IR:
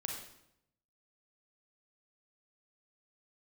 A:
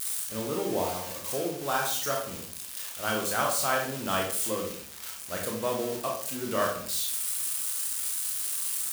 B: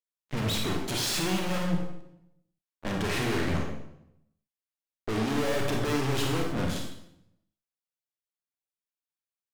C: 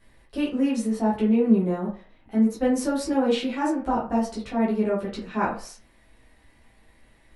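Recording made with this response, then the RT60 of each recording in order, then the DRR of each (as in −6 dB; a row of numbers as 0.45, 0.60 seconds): B; 0.55, 0.80, 0.40 seconds; −1.0, 0.0, −7.0 decibels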